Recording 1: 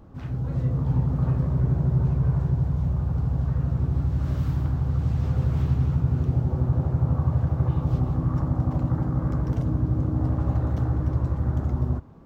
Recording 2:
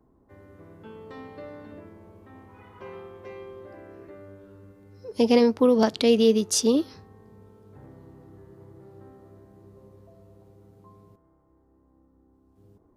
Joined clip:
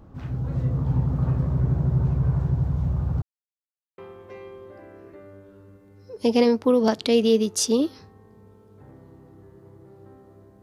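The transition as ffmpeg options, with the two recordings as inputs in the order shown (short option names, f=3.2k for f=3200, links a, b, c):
-filter_complex "[0:a]apad=whole_dur=10.62,atrim=end=10.62,asplit=2[a][b];[a]atrim=end=3.22,asetpts=PTS-STARTPTS,afade=t=out:st=3.216:d=0.004:c=hsin[c];[b]atrim=start=3.22:end=3.98,asetpts=PTS-STARTPTS,volume=0[d];[1:a]atrim=start=2.93:end=9.57,asetpts=PTS-STARTPTS,afade=t=in:d=0.004:c=hsin[e];[c][d][e]concat=n=3:v=0:a=1"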